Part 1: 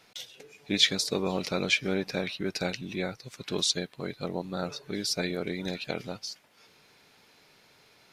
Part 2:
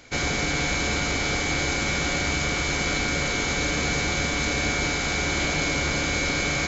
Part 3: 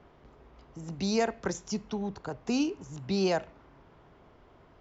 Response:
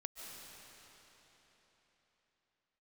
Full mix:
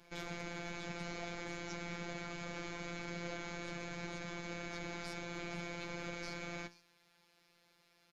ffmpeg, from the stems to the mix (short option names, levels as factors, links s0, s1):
-filter_complex "[0:a]acompressor=threshold=0.02:ratio=6,volume=0.668,asplit=2[s0][s1];[s1]volume=0.119[s2];[1:a]lowpass=f=2200:p=1,alimiter=limit=0.0841:level=0:latency=1:release=15,volume=0.501[s3];[2:a]volume=0.668,asplit=2[s4][s5];[s5]apad=whole_len=358238[s6];[s0][s6]sidechaincompress=threshold=0.00447:ratio=8:attack=16:release=1110[s7];[s7][s4]amix=inputs=2:normalize=0,acompressor=threshold=0.00794:ratio=6,volume=1[s8];[s2]aecho=0:1:477:1[s9];[s3][s8][s9]amix=inputs=3:normalize=0,flanger=delay=9.9:depth=7.1:regen=74:speed=0.68:shape=sinusoidal,afftfilt=real='hypot(re,im)*cos(PI*b)':imag='0':win_size=1024:overlap=0.75"